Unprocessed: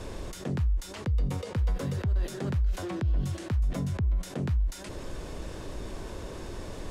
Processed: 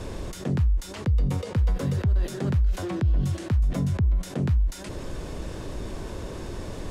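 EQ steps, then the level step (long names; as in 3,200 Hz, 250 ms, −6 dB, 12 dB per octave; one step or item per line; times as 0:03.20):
parametric band 130 Hz +3.5 dB 2.6 octaves
+2.5 dB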